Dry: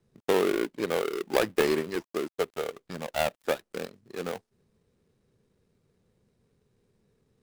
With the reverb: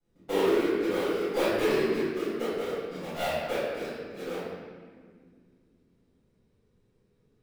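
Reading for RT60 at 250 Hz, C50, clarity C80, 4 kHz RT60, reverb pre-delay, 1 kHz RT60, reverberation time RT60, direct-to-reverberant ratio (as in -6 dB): 3.5 s, -4.0 dB, -0.5 dB, 1.2 s, 3 ms, 1.6 s, 1.9 s, -15.5 dB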